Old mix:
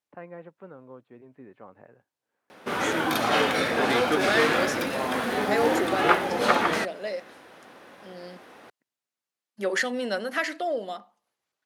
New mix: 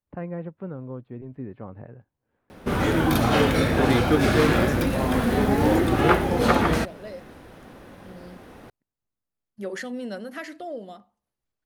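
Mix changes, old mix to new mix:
first voice +3.5 dB; second voice -9.0 dB; master: remove frequency weighting A

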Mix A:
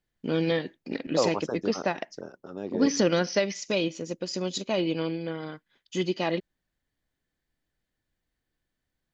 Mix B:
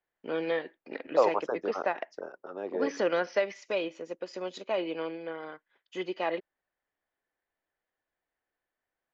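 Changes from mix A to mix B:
second voice +4.0 dB; master: add three-band isolator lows -21 dB, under 390 Hz, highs -18 dB, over 2.6 kHz

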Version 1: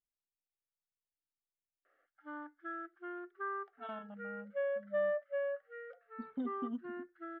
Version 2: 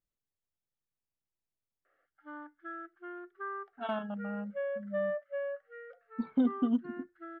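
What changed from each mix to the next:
speech +11.5 dB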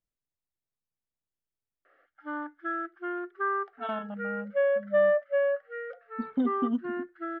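background +10.5 dB

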